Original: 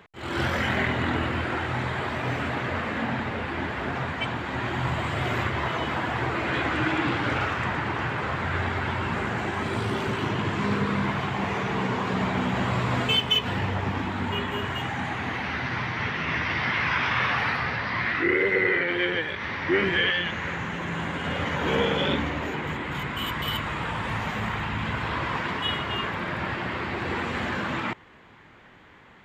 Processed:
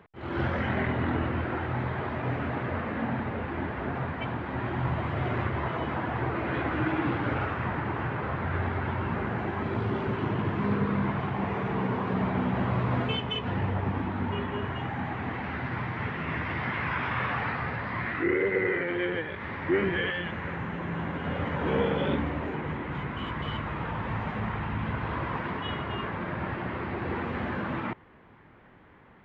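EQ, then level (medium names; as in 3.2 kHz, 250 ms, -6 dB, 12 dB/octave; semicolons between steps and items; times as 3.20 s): tape spacing loss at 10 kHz 37 dB; 0.0 dB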